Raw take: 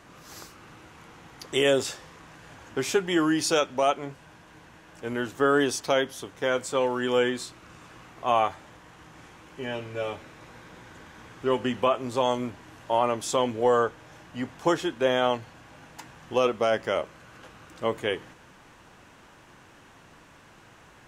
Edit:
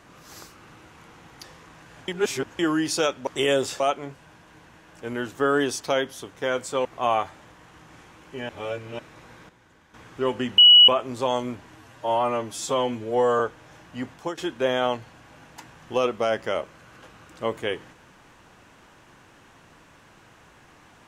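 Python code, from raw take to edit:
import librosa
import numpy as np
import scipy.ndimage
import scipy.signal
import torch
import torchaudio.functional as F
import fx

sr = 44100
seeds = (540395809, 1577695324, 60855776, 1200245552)

y = fx.edit(x, sr, fx.move(start_s=1.44, length_s=0.53, to_s=3.8),
    fx.reverse_span(start_s=2.61, length_s=0.51),
    fx.cut(start_s=6.85, length_s=1.25),
    fx.reverse_span(start_s=9.74, length_s=0.5),
    fx.clip_gain(start_s=10.74, length_s=0.45, db=-10.0),
    fx.insert_tone(at_s=11.83, length_s=0.3, hz=2930.0, db=-8.0),
    fx.stretch_span(start_s=12.71, length_s=1.09, factor=1.5),
    fx.fade_out_to(start_s=14.52, length_s=0.26, floor_db=-17.5), tone=tone)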